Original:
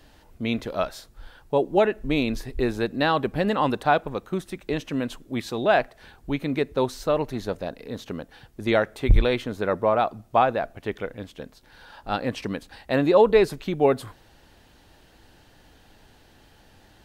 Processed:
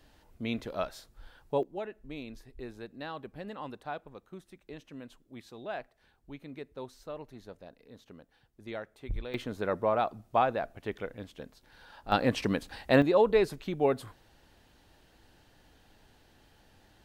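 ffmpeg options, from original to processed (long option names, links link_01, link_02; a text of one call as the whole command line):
ffmpeg -i in.wav -af "asetnsamples=nb_out_samples=441:pad=0,asendcmd='1.63 volume volume -18.5dB;9.34 volume volume -6.5dB;12.12 volume volume 0.5dB;13.02 volume volume -7dB',volume=-7.5dB" out.wav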